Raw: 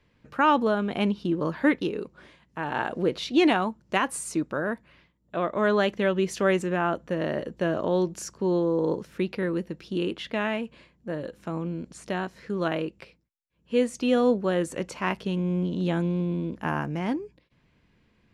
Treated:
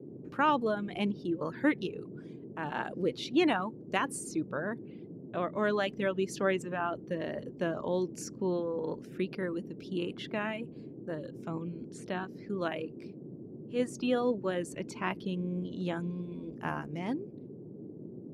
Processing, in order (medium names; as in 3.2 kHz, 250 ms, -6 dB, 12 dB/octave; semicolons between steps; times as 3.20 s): gate -60 dBFS, range -23 dB; reverb removal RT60 1.4 s; 12.87–13.80 s: transient shaper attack -7 dB, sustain +3 dB; band noise 120–400 Hz -40 dBFS; trim -5.5 dB